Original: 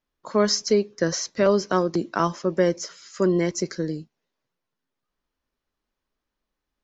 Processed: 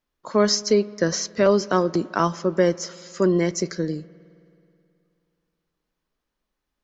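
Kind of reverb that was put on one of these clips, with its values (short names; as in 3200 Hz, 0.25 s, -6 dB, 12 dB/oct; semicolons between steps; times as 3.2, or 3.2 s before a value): spring tank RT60 2.7 s, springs 53 ms, chirp 30 ms, DRR 20 dB; gain +1.5 dB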